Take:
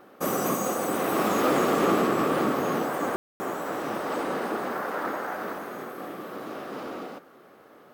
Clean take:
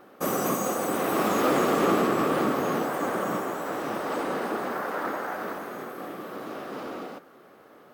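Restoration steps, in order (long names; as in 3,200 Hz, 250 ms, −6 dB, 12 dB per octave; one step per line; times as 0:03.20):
ambience match 0:03.16–0:03.40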